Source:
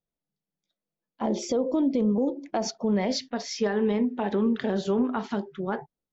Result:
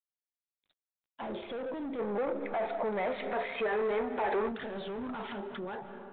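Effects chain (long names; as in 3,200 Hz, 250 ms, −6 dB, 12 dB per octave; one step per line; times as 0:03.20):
fade-out on the ending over 0.66 s
0:01.28–0:02.87: low-shelf EQ 82 Hz −8.5 dB
mid-hump overdrive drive 23 dB, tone 2,600 Hz, clips at −15.5 dBFS
0:03.91–0:04.52: parametric band 170 Hz −12.5 dB 0.65 octaves
convolution reverb RT60 2.5 s, pre-delay 100 ms, DRR 16 dB
downward compressor 5 to 1, threshold −28 dBFS, peak gain reduction 8.5 dB
brickwall limiter −29 dBFS, peak gain reduction 10 dB
0:01.99–0:04.49: gain on a spectral selection 360–2,600 Hz +8 dB
level −3.5 dB
G.726 32 kbit/s 8,000 Hz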